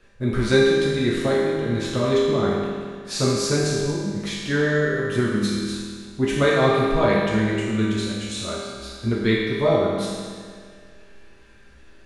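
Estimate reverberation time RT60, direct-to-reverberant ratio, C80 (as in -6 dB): 1.9 s, -7.5 dB, 0.5 dB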